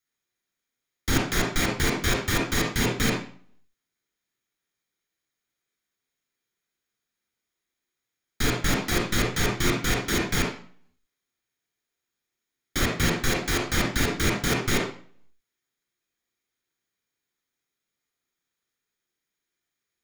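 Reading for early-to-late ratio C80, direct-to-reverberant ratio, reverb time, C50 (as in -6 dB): 9.0 dB, -0.5 dB, 0.45 s, 3.0 dB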